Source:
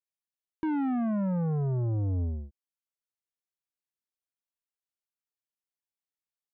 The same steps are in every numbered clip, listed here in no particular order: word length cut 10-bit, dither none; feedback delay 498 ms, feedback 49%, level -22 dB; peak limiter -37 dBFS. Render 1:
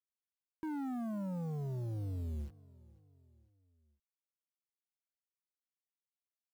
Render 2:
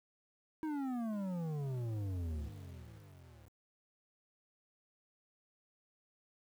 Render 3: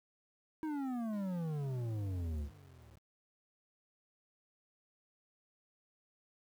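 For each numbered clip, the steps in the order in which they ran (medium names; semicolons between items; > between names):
peak limiter > word length cut > feedback delay; feedback delay > peak limiter > word length cut; peak limiter > feedback delay > word length cut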